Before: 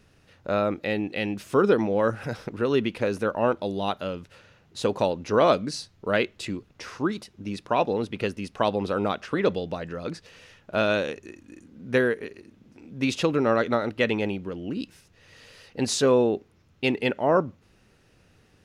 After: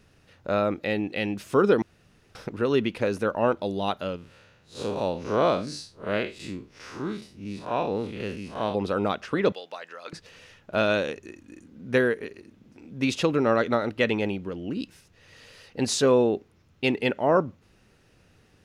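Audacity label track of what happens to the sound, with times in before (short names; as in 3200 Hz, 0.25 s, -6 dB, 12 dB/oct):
1.820000	2.350000	room tone
4.160000	8.750000	time blur width 0.119 s
9.520000	10.130000	HPF 850 Hz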